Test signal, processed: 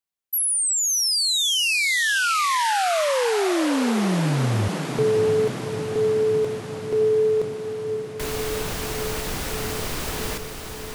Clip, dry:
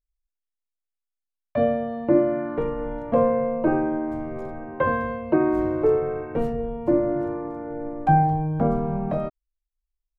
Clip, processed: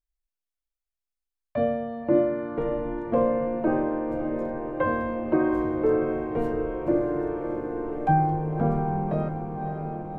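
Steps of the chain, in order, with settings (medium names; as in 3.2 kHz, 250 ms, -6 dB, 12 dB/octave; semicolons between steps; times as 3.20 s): echo that smears into a reverb 610 ms, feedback 74%, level -8.5 dB; trim -3.5 dB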